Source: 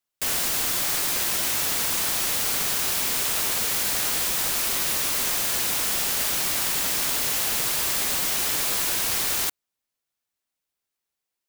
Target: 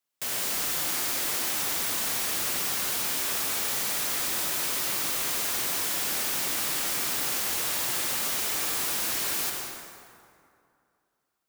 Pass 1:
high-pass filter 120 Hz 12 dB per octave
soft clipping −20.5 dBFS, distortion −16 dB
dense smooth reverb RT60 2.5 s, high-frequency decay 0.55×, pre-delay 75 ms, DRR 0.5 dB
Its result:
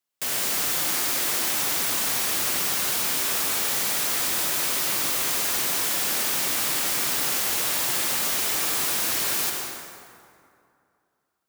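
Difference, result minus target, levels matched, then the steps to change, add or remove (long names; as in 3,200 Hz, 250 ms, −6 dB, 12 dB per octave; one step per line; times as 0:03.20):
soft clipping: distortion −7 dB
change: soft clipping −28 dBFS, distortion −9 dB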